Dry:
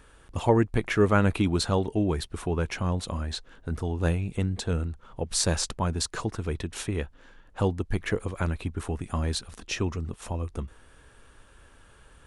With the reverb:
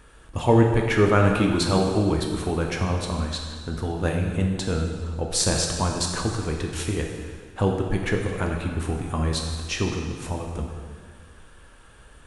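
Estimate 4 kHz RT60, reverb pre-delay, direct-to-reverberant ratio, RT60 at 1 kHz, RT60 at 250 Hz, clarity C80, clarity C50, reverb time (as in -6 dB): 1.7 s, 4 ms, 1.0 dB, 1.8 s, 1.8 s, 5.0 dB, 3.5 dB, 1.8 s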